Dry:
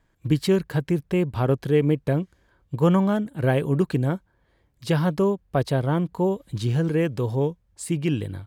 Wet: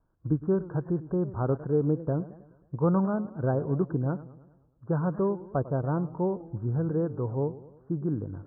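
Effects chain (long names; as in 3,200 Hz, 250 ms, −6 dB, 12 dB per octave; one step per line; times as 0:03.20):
Butterworth low-pass 1,500 Hz 96 dB per octave
feedback echo with a swinging delay time 105 ms, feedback 52%, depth 196 cents, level −16.5 dB
level −5.5 dB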